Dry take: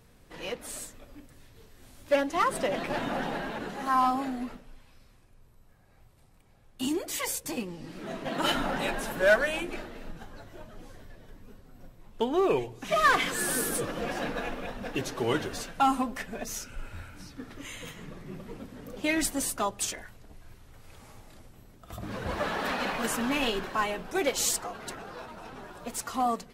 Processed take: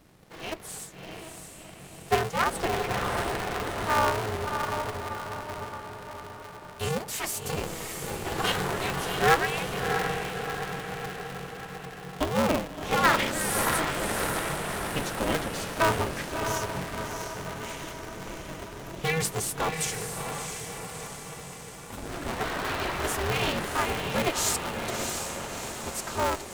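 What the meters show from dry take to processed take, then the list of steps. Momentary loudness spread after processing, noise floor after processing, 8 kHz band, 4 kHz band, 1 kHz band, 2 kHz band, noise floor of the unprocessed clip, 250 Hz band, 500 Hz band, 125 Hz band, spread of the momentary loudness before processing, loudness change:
15 LU, -44 dBFS, +2.0 dB, +3.0 dB, +2.0 dB, +2.0 dB, -58 dBFS, -1.0 dB, +1.0 dB, +8.5 dB, 19 LU, +0.5 dB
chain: echo that smears into a reverb 669 ms, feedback 59%, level -5 dB; polarity switched at an audio rate 160 Hz

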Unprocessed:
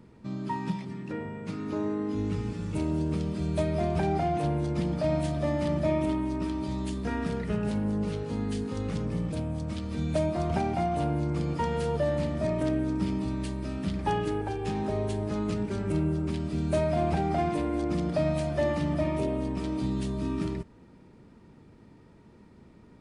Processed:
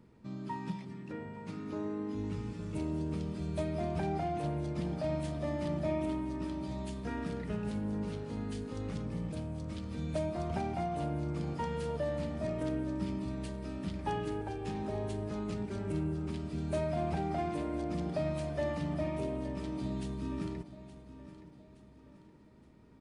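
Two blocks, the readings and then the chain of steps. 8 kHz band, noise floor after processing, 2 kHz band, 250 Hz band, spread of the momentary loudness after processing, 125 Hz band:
-7.0 dB, -57 dBFS, -7.0 dB, -7.0 dB, 6 LU, -7.0 dB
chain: feedback delay 870 ms, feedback 43%, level -15 dB; trim -7 dB

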